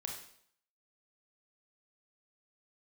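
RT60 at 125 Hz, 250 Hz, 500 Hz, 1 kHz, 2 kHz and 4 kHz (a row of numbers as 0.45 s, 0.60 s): 0.60 s, 0.60 s, 0.65 s, 0.65 s, 0.60 s, 0.60 s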